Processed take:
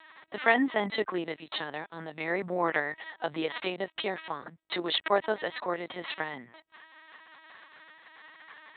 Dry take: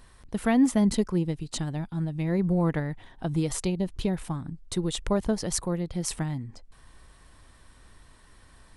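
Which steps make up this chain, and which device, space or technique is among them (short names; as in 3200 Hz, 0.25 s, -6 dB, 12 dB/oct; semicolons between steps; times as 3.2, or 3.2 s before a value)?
talking toy (LPC vocoder at 8 kHz pitch kept; HPF 660 Hz 12 dB/oct; bell 1900 Hz +5 dB 0.4 oct); gain +8.5 dB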